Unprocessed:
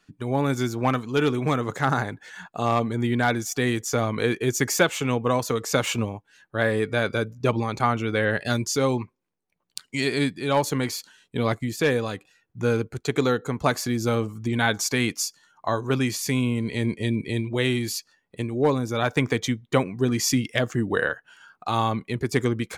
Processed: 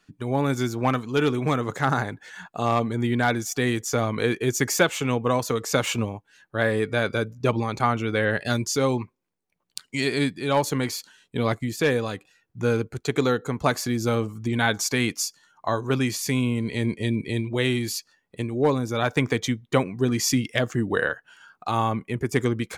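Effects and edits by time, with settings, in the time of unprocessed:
21.71–22.36 s: peaking EQ 4.1 kHz -14.5 dB 0.35 oct

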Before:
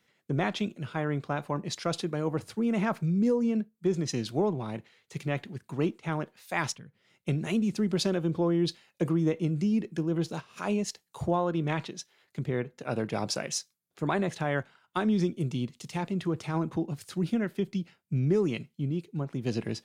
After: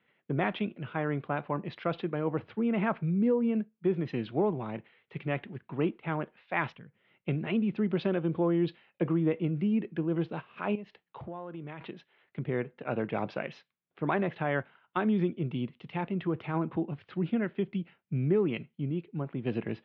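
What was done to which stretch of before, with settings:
10.75–11.81 s: compression 4:1, threshold -38 dBFS
whole clip: steep low-pass 3.1 kHz 36 dB/octave; bass shelf 78 Hz -11 dB

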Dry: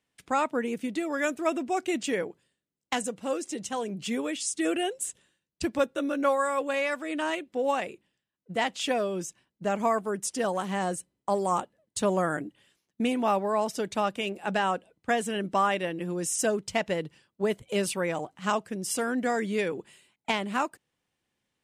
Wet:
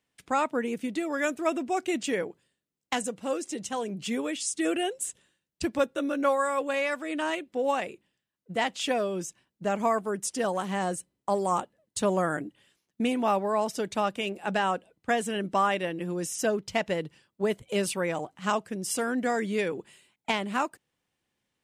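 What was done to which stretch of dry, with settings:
16.26–16.72 s: peaking EQ 8.4 kHz -8 dB 0.6 oct

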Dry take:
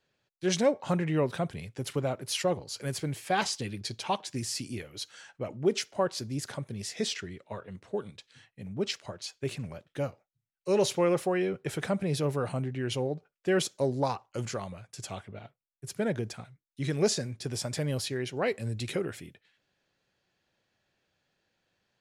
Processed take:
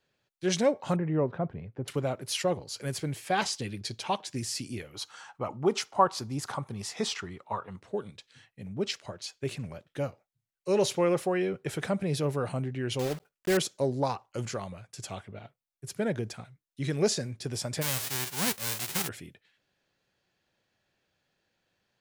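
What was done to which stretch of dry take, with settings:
0.96–1.88 s: low-pass 1.2 kHz
4.94–7.81 s: high-order bell 1 kHz +11.5 dB 1 oct
12.99–13.59 s: block-companded coder 3-bit
17.81–19.07 s: formants flattened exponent 0.1

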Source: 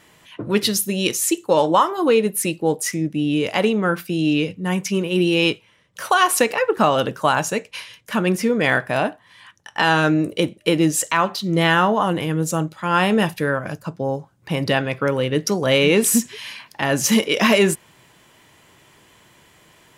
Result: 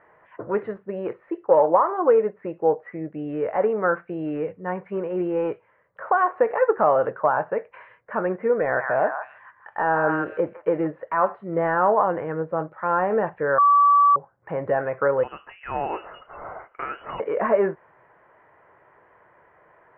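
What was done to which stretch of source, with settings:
8.56–10.87 s: repeats whose band climbs or falls 158 ms, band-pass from 1.2 kHz, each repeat 1.4 oct, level -5 dB
13.58–14.16 s: bleep 1.15 kHz -12.5 dBFS
15.23–17.20 s: frequency inversion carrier 3.1 kHz
whole clip: de-esser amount 90%; steep low-pass 1.8 kHz 36 dB/octave; resonant low shelf 360 Hz -10.5 dB, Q 1.5

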